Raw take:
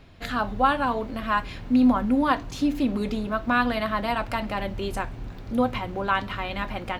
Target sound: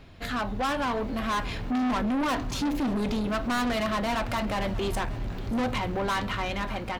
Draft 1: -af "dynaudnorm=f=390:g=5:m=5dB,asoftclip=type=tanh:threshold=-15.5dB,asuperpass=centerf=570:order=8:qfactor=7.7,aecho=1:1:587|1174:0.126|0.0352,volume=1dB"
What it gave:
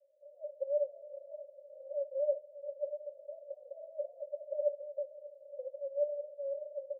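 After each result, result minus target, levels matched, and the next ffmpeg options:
500 Hz band +8.5 dB; soft clip: distortion -7 dB
-af "dynaudnorm=f=390:g=5:m=5dB,asoftclip=type=tanh:threshold=-15.5dB,aecho=1:1:587|1174:0.126|0.0352,volume=1dB"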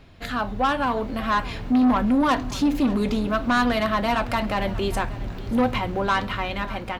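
soft clip: distortion -7 dB
-af "dynaudnorm=f=390:g=5:m=5dB,asoftclip=type=tanh:threshold=-25.5dB,aecho=1:1:587|1174:0.126|0.0352,volume=1dB"

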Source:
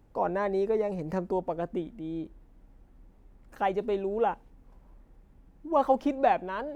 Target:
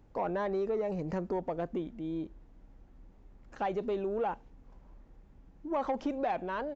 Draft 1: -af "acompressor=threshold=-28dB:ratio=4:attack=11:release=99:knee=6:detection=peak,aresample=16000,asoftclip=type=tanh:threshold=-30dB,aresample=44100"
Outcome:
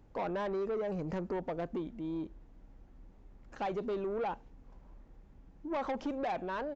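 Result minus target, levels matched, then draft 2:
soft clip: distortion +9 dB
-af "acompressor=threshold=-28dB:ratio=4:attack=11:release=99:knee=6:detection=peak,aresample=16000,asoftclip=type=tanh:threshold=-23dB,aresample=44100"

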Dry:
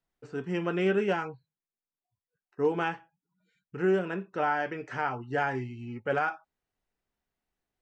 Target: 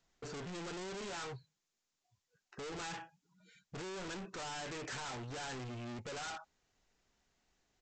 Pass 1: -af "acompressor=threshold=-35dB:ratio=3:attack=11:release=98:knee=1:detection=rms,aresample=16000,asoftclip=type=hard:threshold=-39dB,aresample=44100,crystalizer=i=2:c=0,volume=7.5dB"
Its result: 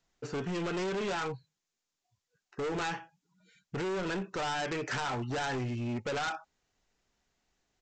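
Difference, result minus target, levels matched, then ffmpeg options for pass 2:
hard clip: distortion -4 dB
-af "acompressor=threshold=-35dB:ratio=3:attack=11:release=98:knee=1:detection=rms,aresample=16000,asoftclip=type=hard:threshold=-51dB,aresample=44100,crystalizer=i=2:c=0,volume=7.5dB"

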